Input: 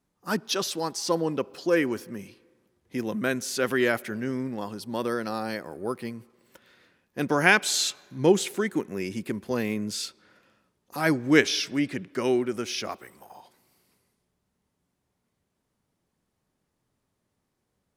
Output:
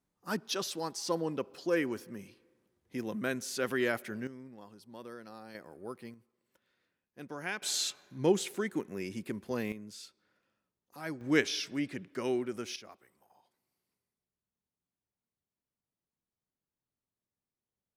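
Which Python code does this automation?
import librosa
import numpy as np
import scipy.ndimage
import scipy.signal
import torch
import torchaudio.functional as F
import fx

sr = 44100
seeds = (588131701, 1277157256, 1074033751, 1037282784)

y = fx.gain(x, sr, db=fx.steps((0.0, -7.0), (4.27, -18.0), (5.55, -12.0), (6.14, -18.5), (7.62, -7.0), (9.72, -16.0), (11.21, -8.0), (12.76, -18.5)))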